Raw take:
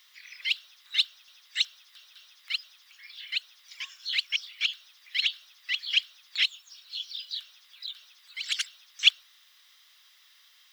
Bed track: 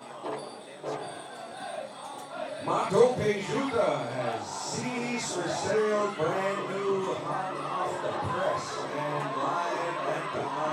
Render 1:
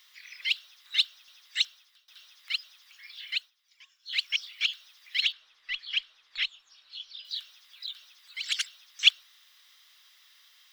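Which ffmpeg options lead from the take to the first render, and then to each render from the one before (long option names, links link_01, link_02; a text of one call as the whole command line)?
ffmpeg -i in.wav -filter_complex "[0:a]asettb=1/sr,asplit=3[link_01][link_02][link_03];[link_01]atrim=end=5.324[link_04];[link_02]atrim=start=5.32:end=7.25,asetpts=PTS-STARTPTS,afade=type=in:duration=0.004:curve=qsin,afade=type=out:start_time=1.926:duration=0.004:curve=qsin,aemphasis=mode=reproduction:type=riaa[link_05];[link_03]atrim=start=7.246[link_06];[link_04][link_05]acrossfade=duration=0.004:curve1=hsin:curve2=qsin[link_07];[link_07][link_06]acrossfade=duration=0.004:curve1=qsin:curve2=hsin,asplit=4[link_08][link_09][link_10][link_11];[link_08]atrim=end=2.08,asetpts=PTS-STARTPTS,afade=type=out:start_time=1.61:duration=0.47:silence=0.1[link_12];[link_09]atrim=start=2.08:end=3.51,asetpts=PTS-STARTPTS,afade=type=in:duration=0.004:curve=hsin:silence=0.1,afade=type=out:start_time=1.28:duration=0.15:silence=0.141254[link_13];[link_10]atrim=start=3.51:end=4.05,asetpts=PTS-STARTPTS,volume=-17dB[link_14];[link_11]atrim=start=4.05,asetpts=PTS-STARTPTS,afade=type=in:duration=0.15:silence=0.141254[link_15];[link_12][link_13][link_14][link_15]concat=n=4:v=0:a=1" out.wav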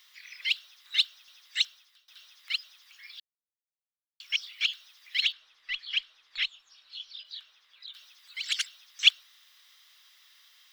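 ffmpeg -i in.wav -filter_complex "[0:a]asettb=1/sr,asplit=3[link_01][link_02][link_03];[link_01]atrim=end=7.234[link_04];[link_02]atrim=start=7.23:end=7.94,asetpts=PTS-STARTPTS,afade=type=in:duration=0.004:curve=qsin,afade=type=out:start_time=0.706:duration=0.004:curve=qsin,lowpass=frequency=1900:poles=1[link_05];[link_03]atrim=start=7.936[link_06];[link_04][link_05]acrossfade=duration=0.004:curve1=hsin:curve2=qsin[link_07];[link_07][link_06]acrossfade=duration=0.004:curve1=qsin:curve2=hsin,asplit=3[link_08][link_09][link_10];[link_08]atrim=end=3.2,asetpts=PTS-STARTPTS,afade=type=out:start_time=3.196:duration=0.004:curve=hsin[link_11];[link_09]atrim=start=3.2:end=4.2,asetpts=PTS-STARTPTS,volume=0[link_12];[link_10]atrim=start=4.2,asetpts=PTS-STARTPTS,afade=type=in:duration=0.004:curve=hsin[link_13];[link_11][link_12][link_13]concat=n=3:v=0:a=1" out.wav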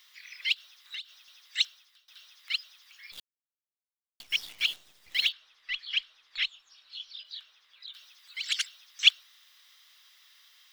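ffmpeg -i in.wav -filter_complex "[0:a]asplit=3[link_01][link_02][link_03];[link_01]afade=type=out:start_time=0.53:duration=0.02[link_04];[link_02]acompressor=threshold=-35dB:ratio=16:attack=3.2:release=140:knee=1:detection=peak,afade=type=in:start_time=0.53:duration=0.02,afade=type=out:start_time=1.57:duration=0.02[link_05];[link_03]afade=type=in:start_time=1.57:duration=0.02[link_06];[link_04][link_05][link_06]amix=inputs=3:normalize=0,asettb=1/sr,asplit=3[link_07][link_08][link_09];[link_07]atrim=end=3.124[link_10];[link_08]atrim=start=3.12:end=5.29,asetpts=PTS-STARTPTS,afade=type=in:duration=0.004:curve=qsin,afade=type=out:start_time=2.166:duration=0.004:curve=qsin,acrusher=bits=8:dc=4:mix=0:aa=0.000001[link_11];[link_09]atrim=start=5.286[link_12];[link_10][link_11]acrossfade=duration=0.004:curve1=hsin:curve2=qsin[link_13];[link_13][link_12]acrossfade=duration=0.004:curve1=qsin:curve2=hsin" out.wav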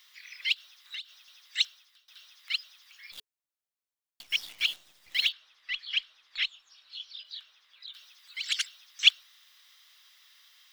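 ffmpeg -i in.wav -af "lowshelf=frequency=210:gain=-3.5,bandreject=frequency=430:width=12" out.wav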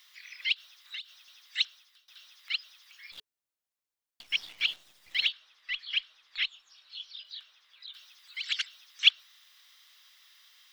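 ffmpeg -i in.wav -filter_complex "[0:a]acrossover=split=5100[link_01][link_02];[link_02]acompressor=threshold=-57dB:ratio=4:attack=1:release=60[link_03];[link_01][link_03]amix=inputs=2:normalize=0" out.wav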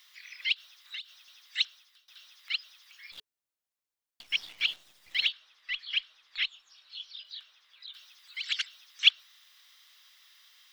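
ffmpeg -i in.wav -af anull out.wav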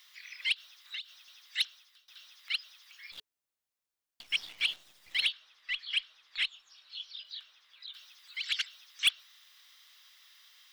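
ffmpeg -i in.wav -af "asoftclip=type=tanh:threshold=-19dB" out.wav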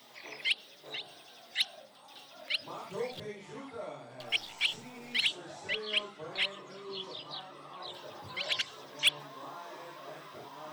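ffmpeg -i in.wav -i bed.wav -filter_complex "[1:a]volume=-16dB[link_01];[0:a][link_01]amix=inputs=2:normalize=0" out.wav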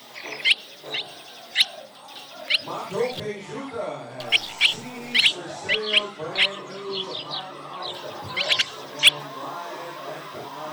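ffmpeg -i in.wav -af "volume=11.5dB" out.wav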